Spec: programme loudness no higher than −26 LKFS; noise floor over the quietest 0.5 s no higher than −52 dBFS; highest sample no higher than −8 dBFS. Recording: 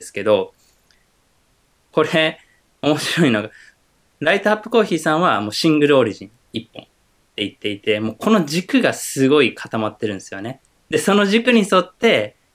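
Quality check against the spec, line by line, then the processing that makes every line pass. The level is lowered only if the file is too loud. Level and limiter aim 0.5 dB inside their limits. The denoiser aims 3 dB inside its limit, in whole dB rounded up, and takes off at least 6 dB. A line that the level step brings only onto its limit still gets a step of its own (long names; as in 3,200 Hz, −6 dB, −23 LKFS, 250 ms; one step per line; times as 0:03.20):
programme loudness −17.5 LKFS: out of spec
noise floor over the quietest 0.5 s −61 dBFS: in spec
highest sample −3.0 dBFS: out of spec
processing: level −9 dB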